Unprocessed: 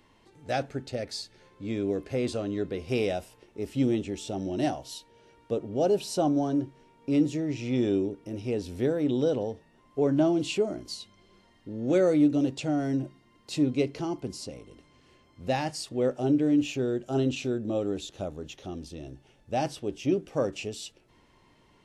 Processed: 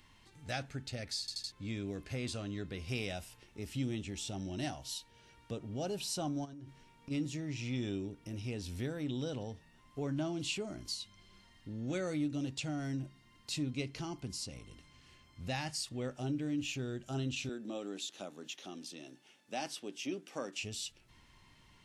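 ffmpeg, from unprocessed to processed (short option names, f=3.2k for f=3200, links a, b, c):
-filter_complex "[0:a]asplit=3[a][b][c];[a]afade=t=out:st=6.44:d=0.02[d];[b]acompressor=threshold=-38dB:ratio=16:attack=3.2:release=140:knee=1:detection=peak,afade=t=in:st=6.44:d=0.02,afade=t=out:st=7.1:d=0.02[e];[c]afade=t=in:st=7.1:d=0.02[f];[d][e][f]amix=inputs=3:normalize=0,asettb=1/sr,asplit=3[g][h][i];[g]atrim=end=17.494[j];[h]atrim=start=17.49:end=20.63,asetpts=PTS-STARTPTS,afade=t=in:d=0.004:c=qsin,afade=t=out:st=3.136:d=0.004:c=qsin,highpass=f=230:w=0.5412,highpass=f=230:w=1.3066[k];[i]atrim=start=20.626[l];[j][k]acrossfade=d=0.004:c1=hsin:c2=qsin[m];[m][l]acrossfade=d=0.004:c1=qsin:c2=hsin,asplit=5[n][o][p][q][r];[n]atrim=end=1.282[s];[o]atrim=start=1.198:end=1.282[t];[p]atrim=start=1.198:end=1.282[u];[q]atrim=start=1.198:end=1.282[v];[r]atrim=start=1.518[w];[s][t]acrossfade=d=0.004:c1=hsin:c2=hsin[x];[x][u]acrossfade=d=0.004:c1=hsin:c2=hsin[y];[y][v]acrossfade=d=0.004:c1=hsin:c2=hsin[z];[z][w]acrossfade=d=0.004:c1=hsin:c2=hsin,equalizer=f=460:w=0.63:g=-14,acompressor=threshold=-46dB:ratio=1.5,volume=3dB"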